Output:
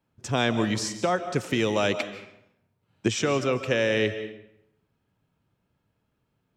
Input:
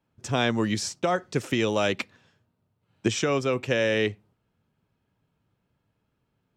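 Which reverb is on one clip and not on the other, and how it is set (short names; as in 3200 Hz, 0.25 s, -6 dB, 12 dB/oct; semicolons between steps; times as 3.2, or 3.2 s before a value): digital reverb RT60 0.76 s, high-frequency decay 0.75×, pre-delay 0.11 s, DRR 10.5 dB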